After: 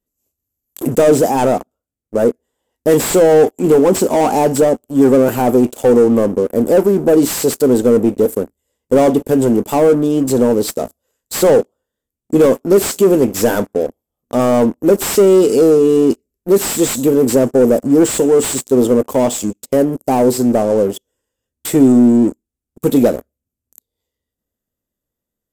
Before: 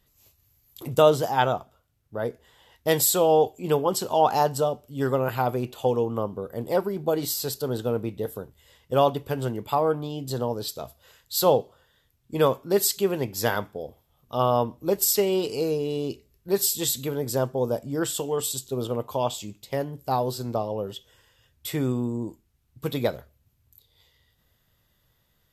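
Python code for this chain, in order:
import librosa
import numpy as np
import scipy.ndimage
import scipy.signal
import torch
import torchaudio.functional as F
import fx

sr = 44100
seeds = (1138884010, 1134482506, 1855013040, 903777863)

y = fx.leveller(x, sr, passes=5)
y = fx.graphic_eq_10(y, sr, hz=(125, 250, 500, 1000, 2000, 4000, 8000), db=(-7, 11, 5, -3, -4, -9, 9))
y = fx.slew_limit(y, sr, full_power_hz=1500.0)
y = F.gain(torch.from_numpy(y), -5.5).numpy()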